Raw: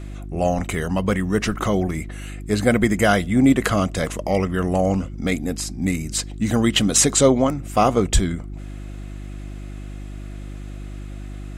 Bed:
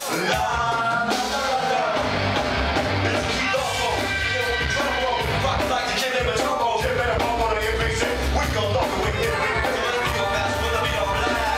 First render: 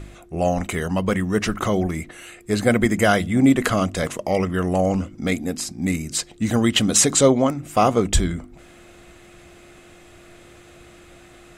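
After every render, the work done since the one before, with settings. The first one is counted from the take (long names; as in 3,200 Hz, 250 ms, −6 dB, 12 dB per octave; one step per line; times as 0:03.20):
hum removal 50 Hz, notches 6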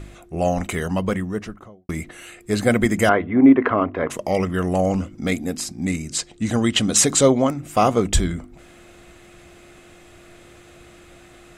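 0:00.87–0:01.89: fade out and dull
0:03.09–0:04.10: loudspeaker in its box 110–2,200 Hz, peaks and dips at 130 Hz −6 dB, 190 Hz −9 dB, 270 Hz +5 dB, 410 Hz +6 dB, 990 Hz +8 dB
0:05.83–0:06.97: Chebyshev low-pass filter 8,400 Hz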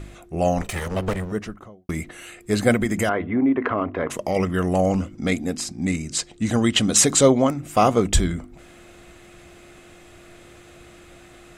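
0:00.61–0:01.32: lower of the sound and its delayed copy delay 1.6 ms
0:02.75–0:04.36: downward compressor 2.5 to 1, threshold −19 dBFS
0:05.15–0:06.17: low-pass filter 9,800 Hz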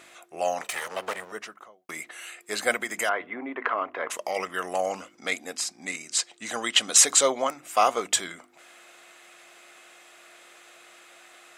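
high-pass filter 770 Hz 12 dB per octave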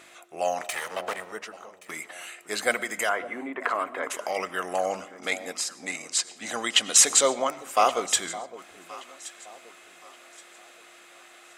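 delay that swaps between a low-pass and a high-pass 562 ms, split 850 Hz, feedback 55%, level −13.5 dB
comb and all-pass reverb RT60 0.77 s, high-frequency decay 0.7×, pre-delay 60 ms, DRR 18.5 dB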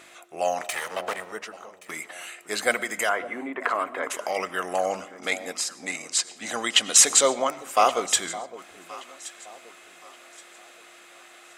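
level +1.5 dB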